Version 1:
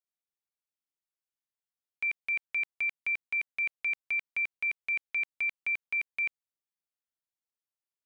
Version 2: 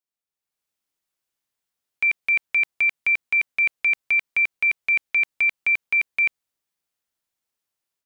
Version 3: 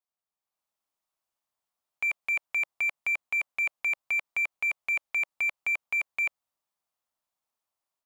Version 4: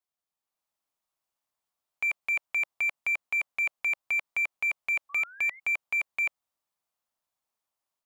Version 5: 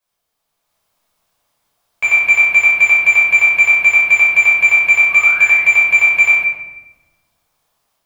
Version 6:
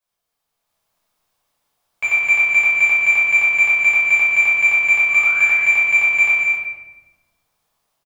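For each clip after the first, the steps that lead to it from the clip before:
level rider gain up to 10.5 dB
high-order bell 860 Hz +8.5 dB 1.3 oct; in parallel at -7 dB: overload inside the chain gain 26 dB; on the sum: trim -9 dB
painted sound rise, 5.09–5.60 s, 1.1–2.2 kHz -49 dBFS
in parallel at -1 dB: level held to a coarse grid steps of 11 dB; on the sum: reverberation RT60 1.1 s, pre-delay 9 ms, DRR -8 dB; trim +4.5 dB
delay 205 ms -6 dB; trim -5 dB

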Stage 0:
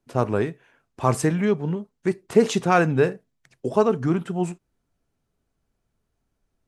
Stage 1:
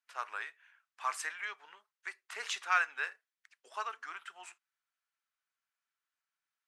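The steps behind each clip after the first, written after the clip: high-pass 1.4 kHz 24 dB/octave; tilt EQ -3.5 dB/octave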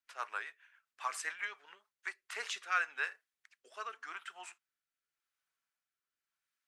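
rotary cabinet horn 7.5 Hz, later 0.9 Hz, at 1.60 s; trim +2 dB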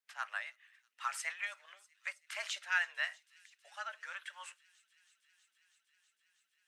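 frequency shift +190 Hz; feedback echo behind a high-pass 322 ms, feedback 84%, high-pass 3.8 kHz, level -20.5 dB

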